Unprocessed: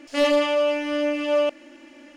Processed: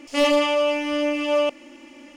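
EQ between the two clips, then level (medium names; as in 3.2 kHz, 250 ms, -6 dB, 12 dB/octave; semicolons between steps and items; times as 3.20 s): graphic EQ with 31 bands 315 Hz -4 dB, 630 Hz -6 dB, 1.6 kHz -11 dB, 4 kHz -5 dB; +4.5 dB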